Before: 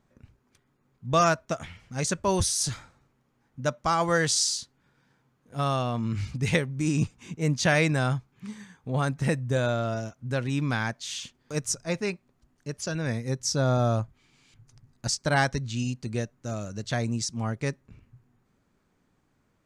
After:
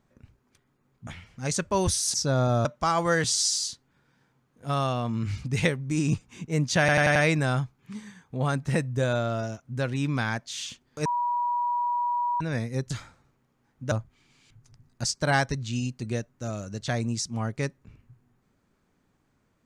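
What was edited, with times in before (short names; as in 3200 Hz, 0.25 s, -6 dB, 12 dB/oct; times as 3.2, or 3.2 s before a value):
1.07–1.6 cut
2.67–3.68 swap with 13.44–13.95
4.27–4.54 stretch 1.5×
7.69 stutter 0.09 s, 5 plays
11.59–12.94 bleep 966 Hz -23.5 dBFS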